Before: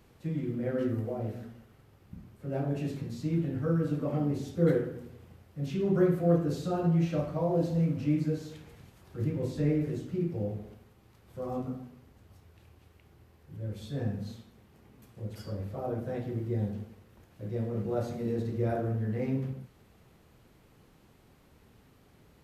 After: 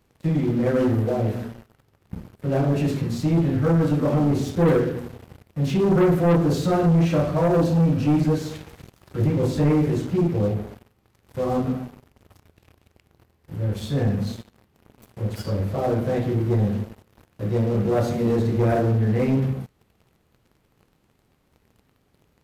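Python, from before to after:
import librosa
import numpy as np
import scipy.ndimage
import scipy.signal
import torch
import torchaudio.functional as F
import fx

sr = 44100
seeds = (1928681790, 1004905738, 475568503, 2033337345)

y = fx.leveller(x, sr, passes=3)
y = fx.notch(y, sr, hz=2100.0, q=10.0, at=(7.52, 8.19))
y = y * librosa.db_to_amplitude(1.0)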